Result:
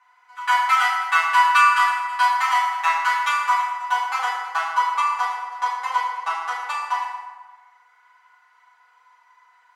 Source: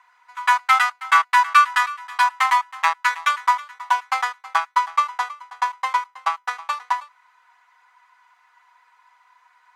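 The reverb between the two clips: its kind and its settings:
feedback delay network reverb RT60 1.4 s, low-frequency decay 1.35×, high-frequency decay 0.6×, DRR −8 dB
level −8.5 dB

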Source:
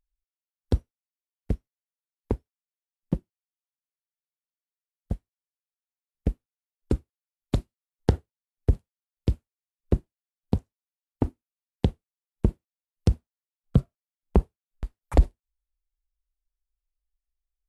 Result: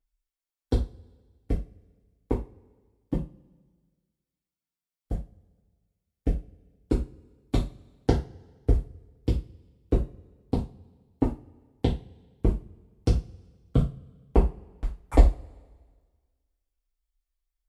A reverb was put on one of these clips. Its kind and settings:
coupled-rooms reverb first 0.27 s, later 1.6 s, from −27 dB, DRR −7 dB
level −6 dB

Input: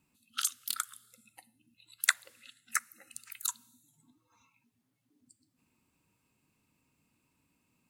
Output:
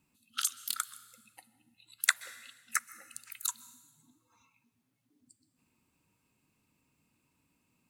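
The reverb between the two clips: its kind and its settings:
dense smooth reverb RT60 1.2 s, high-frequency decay 1×, pre-delay 115 ms, DRR 18.5 dB

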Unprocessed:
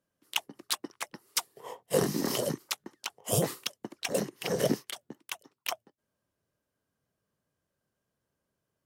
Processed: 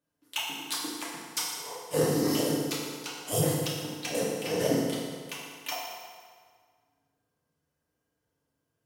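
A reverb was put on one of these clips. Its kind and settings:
feedback delay network reverb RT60 1.8 s, low-frequency decay 0.9×, high-frequency decay 0.8×, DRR −6.5 dB
level −5.5 dB

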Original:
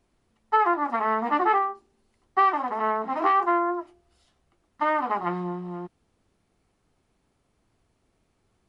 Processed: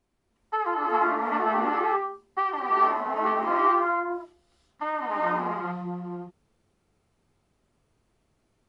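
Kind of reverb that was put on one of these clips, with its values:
reverb whose tail is shaped and stops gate 450 ms rising, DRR −4.5 dB
level −6.5 dB

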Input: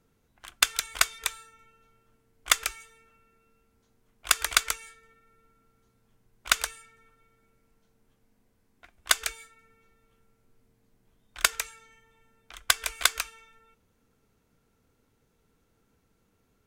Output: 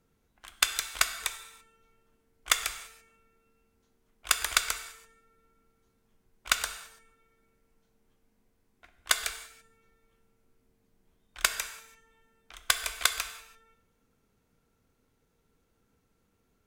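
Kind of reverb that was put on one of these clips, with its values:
reverb whose tail is shaped and stops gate 360 ms falling, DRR 8.5 dB
level −3 dB

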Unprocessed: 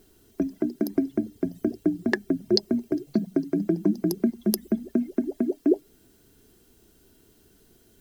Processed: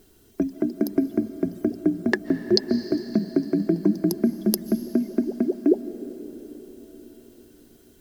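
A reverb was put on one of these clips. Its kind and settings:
comb and all-pass reverb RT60 4.9 s, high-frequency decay 0.8×, pre-delay 105 ms, DRR 12 dB
level +2 dB

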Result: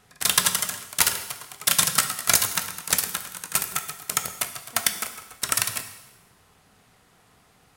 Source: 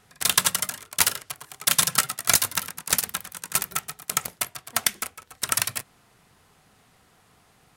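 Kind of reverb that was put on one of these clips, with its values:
dense smooth reverb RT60 1.1 s, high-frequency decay 0.95×, DRR 8 dB

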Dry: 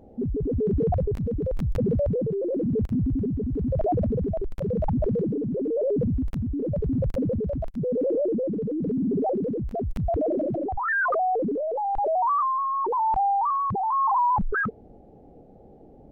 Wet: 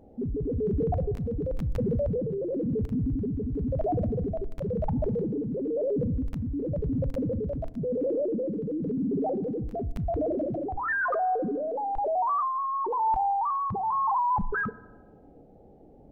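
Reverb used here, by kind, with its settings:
feedback delay network reverb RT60 1.1 s, low-frequency decay 1.5×, high-frequency decay 0.35×, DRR 17 dB
level −3.5 dB

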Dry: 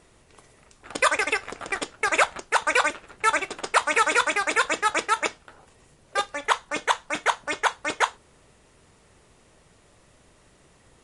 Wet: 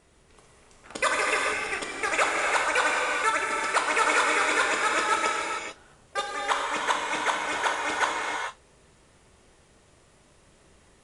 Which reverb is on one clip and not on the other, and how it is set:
reverb whose tail is shaped and stops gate 470 ms flat, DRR −2 dB
level −5 dB

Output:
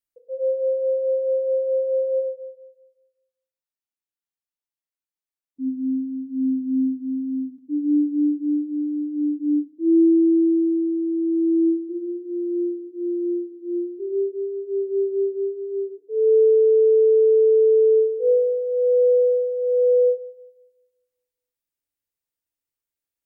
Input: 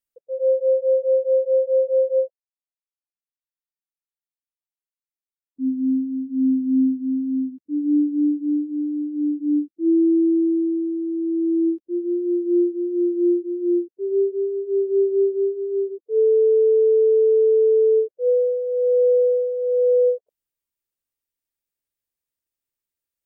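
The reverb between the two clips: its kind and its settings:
feedback delay network reverb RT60 1.2 s, low-frequency decay 0.75×, high-frequency decay 0.85×, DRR 6 dB
level −2.5 dB

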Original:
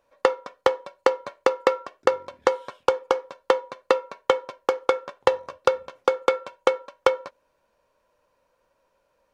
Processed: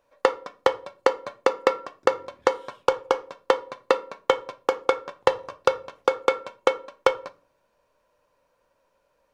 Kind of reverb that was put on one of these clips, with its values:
rectangular room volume 370 cubic metres, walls furnished, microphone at 0.38 metres

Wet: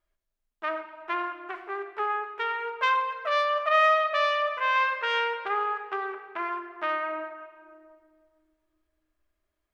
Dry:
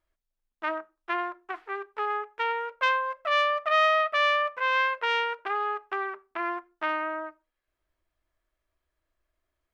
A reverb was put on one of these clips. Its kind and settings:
rectangular room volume 3,600 cubic metres, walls mixed, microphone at 1.3 metres
level −1.5 dB

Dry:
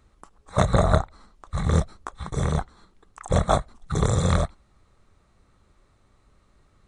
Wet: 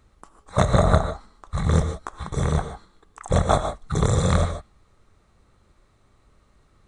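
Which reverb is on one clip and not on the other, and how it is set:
reverb whose tail is shaped and stops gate 170 ms rising, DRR 8 dB
level +1 dB

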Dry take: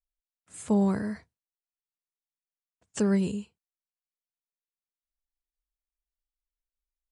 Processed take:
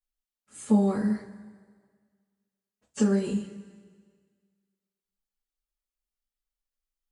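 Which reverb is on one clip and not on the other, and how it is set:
coupled-rooms reverb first 0.21 s, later 1.7 s, from −20 dB, DRR −9.5 dB
level −10 dB

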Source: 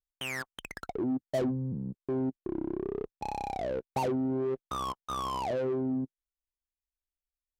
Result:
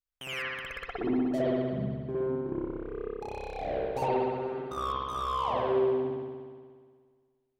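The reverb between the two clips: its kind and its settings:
spring reverb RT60 1.8 s, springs 59 ms, chirp 55 ms, DRR −8.5 dB
level −6 dB

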